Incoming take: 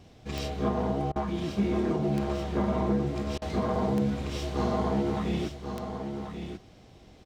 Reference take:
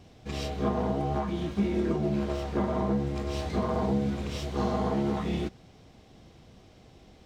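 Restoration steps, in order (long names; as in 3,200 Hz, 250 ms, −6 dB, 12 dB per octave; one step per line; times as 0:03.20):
click removal
repair the gap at 0:01.12/0:03.38, 37 ms
echo removal 1,086 ms −7.5 dB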